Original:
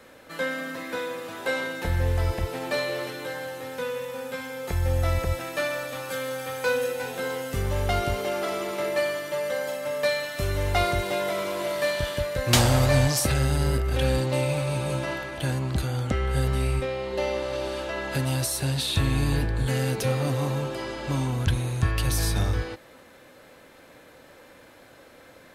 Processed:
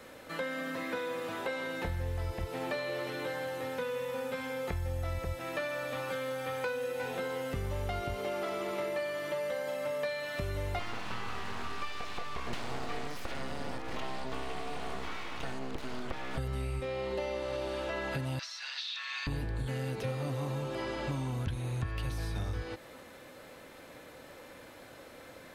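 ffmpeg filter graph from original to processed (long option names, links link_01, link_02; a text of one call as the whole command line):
ffmpeg -i in.wav -filter_complex "[0:a]asettb=1/sr,asplit=3[link_01][link_02][link_03];[link_01]atrim=end=10.794[link_04];[link_02]atrim=start=10.79:end=16.38,asetpts=PTS-STARTPTS,afade=type=in:duration=0.004:curve=qsin,afade=type=out:start_time=5.586:duration=0.004:curve=qsin,highpass=140,lowpass=6800,aeval=exprs='abs(val(0))':channel_layout=same[link_05];[link_03]atrim=start=16.376[link_06];[link_04][link_05]acrossfade=duration=0.004:curve1=hsin:curve2=qsin[link_07];[link_07][link_06]acrossfade=duration=0.004:curve1=qsin:curve2=hsin,asettb=1/sr,asplit=3[link_08][link_09][link_10];[link_08]atrim=end=18.394[link_11];[link_09]atrim=start=18.39:end=19.27,asetpts=PTS-STARTPTS,afade=type=in:duration=0.004:curve=qsin,afade=type=out:start_time=0.876:duration=0.004:curve=qsin,highpass=frequency=1300:width=0.5412,highpass=frequency=1300:width=1.3066,highshelf=frequency=7600:width_type=q:width=3:gain=-12,acontrast=27[link_12];[link_10]atrim=start=19.266[link_13];[link_11][link_12]acrossfade=duration=0.004:curve1=hsin:curve2=qsin[link_14];[link_14][link_13]acrossfade=duration=0.004:curve1=qsin:curve2=hsin,acompressor=threshold=-32dB:ratio=6,bandreject=frequency=1600:width=30,acrossover=split=3700[link_15][link_16];[link_16]acompressor=threshold=-53dB:ratio=4:attack=1:release=60[link_17];[link_15][link_17]amix=inputs=2:normalize=0" out.wav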